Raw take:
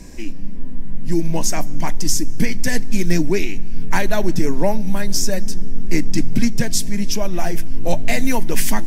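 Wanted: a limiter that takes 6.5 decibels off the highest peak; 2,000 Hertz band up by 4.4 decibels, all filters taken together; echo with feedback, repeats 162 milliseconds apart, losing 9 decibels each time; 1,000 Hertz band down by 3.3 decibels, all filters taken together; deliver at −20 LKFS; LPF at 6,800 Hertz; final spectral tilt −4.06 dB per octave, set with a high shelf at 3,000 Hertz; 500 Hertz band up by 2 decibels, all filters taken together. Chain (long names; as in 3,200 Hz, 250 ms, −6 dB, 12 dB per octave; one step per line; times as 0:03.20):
low-pass filter 6,800 Hz
parametric band 500 Hz +4.5 dB
parametric band 1,000 Hz −8 dB
parametric band 2,000 Hz +5 dB
high-shelf EQ 3,000 Hz +5.5 dB
brickwall limiter −6 dBFS
repeating echo 162 ms, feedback 35%, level −9 dB
level +2 dB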